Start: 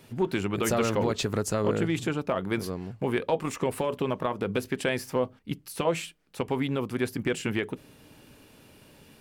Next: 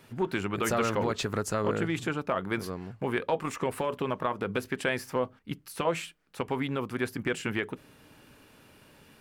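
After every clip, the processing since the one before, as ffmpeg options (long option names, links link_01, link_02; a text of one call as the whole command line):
ffmpeg -i in.wav -af "equalizer=frequency=1400:width_type=o:width=1.4:gain=6,volume=-3.5dB" out.wav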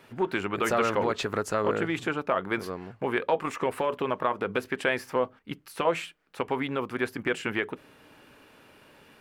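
ffmpeg -i in.wav -af "bass=frequency=250:gain=-8,treble=frequency=4000:gain=-7,volume=3.5dB" out.wav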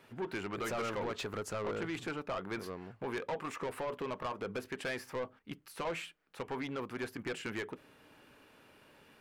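ffmpeg -i in.wav -af "asoftclip=type=tanh:threshold=-26dB,volume=-6dB" out.wav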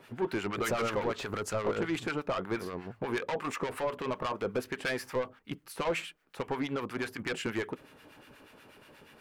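ffmpeg -i in.wav -filter_complex "[0:a]acrossover=split=1100[link_01][link_02];[link_01]aeval=exprs='val(0)*(1-0.7/2+0.7/2*cos(2*PI*8.3*n/s))':channel_layout=same[link_03];[link_02]aeval=exprs='val(0)*(1-0.7/2-0.7/2*cos(2*PI*8.3*n/s))':channel_layout=same[link_04];[link_03][link_04]amix=inputs=2:normalize=0,volume=8.5dB" out.wav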